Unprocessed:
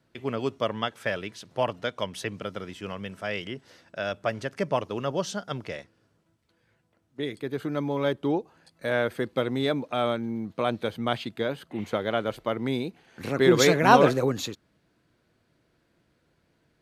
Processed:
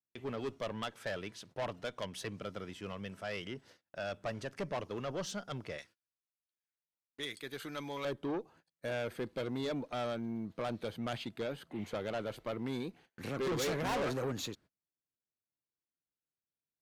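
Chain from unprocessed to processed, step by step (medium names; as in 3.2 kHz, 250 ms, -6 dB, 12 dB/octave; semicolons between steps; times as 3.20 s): gate -51 dBFS, range -31 dB; 5.78–8.05 s: tilt shelf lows -9.5 dB, about 1.1 kHz; valve stage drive 26 dB, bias 0.2; trim -5.5 dB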